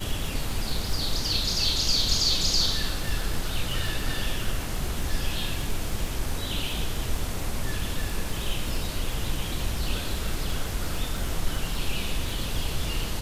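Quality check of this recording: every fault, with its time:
crackle 44/s -31 dBFS

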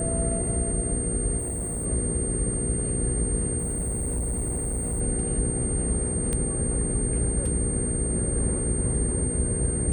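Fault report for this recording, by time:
hum 60 Hz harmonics 8 -32 dBFS
tone 8700 Hz -29 dBFS
1.38–1.86 clipped -26.5 dBFS
3.58–5.01 clipped -24 dBFS
6.33 pop -15 dBFS

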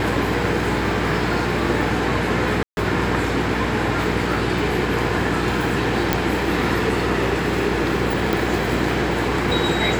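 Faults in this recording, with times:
hum 60 Hz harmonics 8 -26 dBFS
2.63–2.77 gap 0.141 s
6.13 pop
8.33 pop

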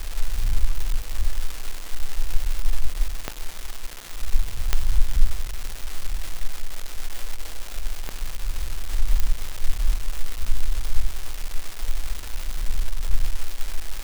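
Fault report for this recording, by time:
crackle 570/s -25 dBFS
3.28 pop -9 dBFS
4.73 pop -4 dBFS
8.09 pop -14 dBFS
9.2 pop -8 dBFS

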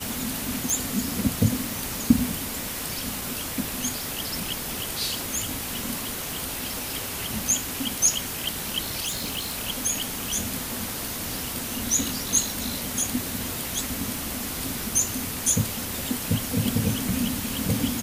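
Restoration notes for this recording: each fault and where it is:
0.7 pop
9.05–9.56 clipped -25 dBFS

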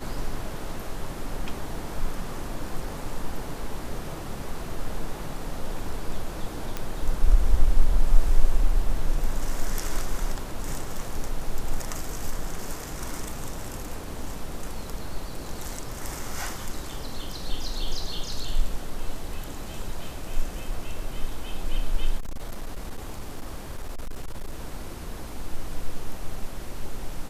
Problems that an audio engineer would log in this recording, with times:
6.77 pop -14 dBFS
22.18–24.6 clipped -27 dBFS

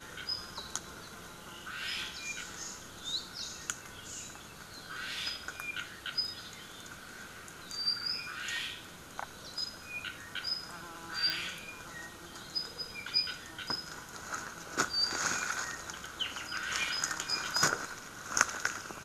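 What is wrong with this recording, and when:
11.3 pop

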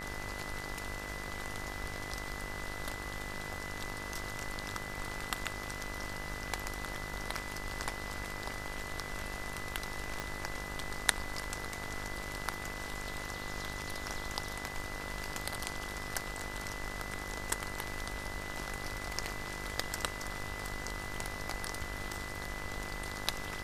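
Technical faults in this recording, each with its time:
buzz 50 Hz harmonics 36 -45 dBFS
tone 2000 Hz -44 dBFS
10.2 pop -21 dBFS

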